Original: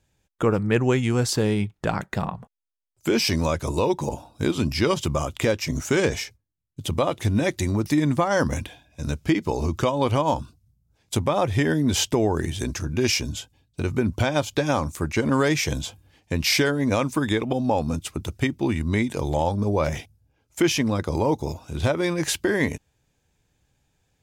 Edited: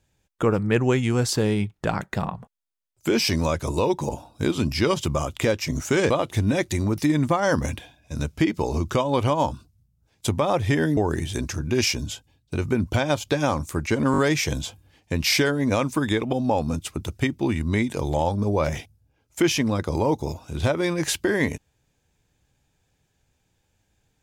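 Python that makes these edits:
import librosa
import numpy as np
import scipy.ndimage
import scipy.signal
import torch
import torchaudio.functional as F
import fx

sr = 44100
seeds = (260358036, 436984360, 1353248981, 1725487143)

y = fx.edit(x, sr, fx.cut(start_s=6.1, length_s=0.88),
    fx.cut(start_s=11.85, length_s=0.38),
    fx.stutter(start_s=15.38, slice_s=0.02, count=4), tone=tone)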